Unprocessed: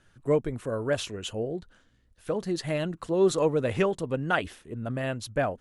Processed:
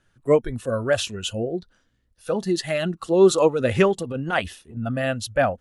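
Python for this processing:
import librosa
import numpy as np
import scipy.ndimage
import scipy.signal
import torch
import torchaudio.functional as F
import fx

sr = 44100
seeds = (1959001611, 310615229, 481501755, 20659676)

y = fx.noise_reduce_blind(x, sr, reduce_db=11)
y = fx.transient(y, sr, attack_db=-12, sustain_db=0, at=(3.87, 4.77))
y = y * 10.0 ** (7.5 / 20.0)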